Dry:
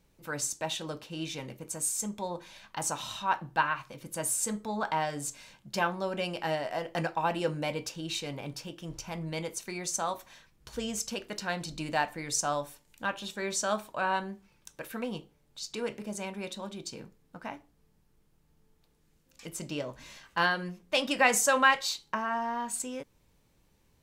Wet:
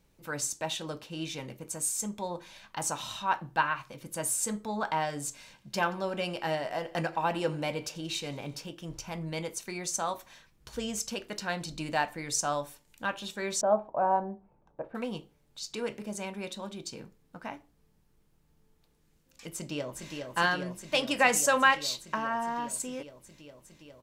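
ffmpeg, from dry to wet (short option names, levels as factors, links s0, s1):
-filter_complex "[0:a]asettb=1/sr,asplit=3[s0][s1][s2];[s0]atrim=end=5.394[s3];[s1]atrim=start=5.39:end=8.66,asetpts=PTS-STARTPTS,afade=t=in:d=0.004:c=qsin,afade=t=out:st=3.266:d=0.004:c=qsin,aecho=1:1:89|178|267|356|445:0.0944|0.0557|0.0329|0.0194|0.0114,atrim=end_sample=144207[s4];[s2]atrim=start=8.656[s5];[s3][s4]acrossfade=d=0.004:c1=hsin:c2=qsin[s6];[s6][s5]acrossfade=d=0.004:c1=qsin:c2=hsin,asettb=1/sr,asplit=3[s7][s8][s9];[s7]atrim=end=13.614[s10];[s8]atrim=start=13.61:end=14.95,asetpts=PTS-STARTPTS,afade=t=in:d=0.004:c=qsin,afade=t=out:st=1.336:d=0.004:c=qsin,lowpass=f=740:t=q:w=2.6[s11];[s9]atrim=start=14.946[s12];[s10][s11]acrossfade=d=0.004:c1=hsin:c2=qsin[s13];[s13][s12]acrossfade=d=0.004:c1=qsin:c2=hsin,asplit=2[s14][s15];[s15]afade=t=in:st=19.5:d=0.01,afade=t=out:st=20.13:d=0.01,aecho=0:1:410|820|1230|1640|2050|2460|2870|3280|3690|4100|4510|4920:0.595662|0.506313|0.430366|0.365811|0.310939|0.264298|0.224654|0.190956|0.162312|0.137965|0.117271|0.09968[s16];[s14][s16]amix=inputs=2:normalize=0"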